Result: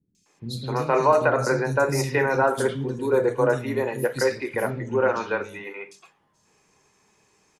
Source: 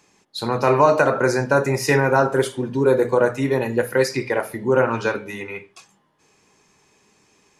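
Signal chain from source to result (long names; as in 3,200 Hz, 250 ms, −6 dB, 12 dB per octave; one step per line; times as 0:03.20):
0:04.55–0:05.34: low-pass filter 7,100 Hz 24 dB per octave
three-band delay without the direct sound lows, highs, mids 150/260 ms, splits 260/3,400 Hz
level −3 dB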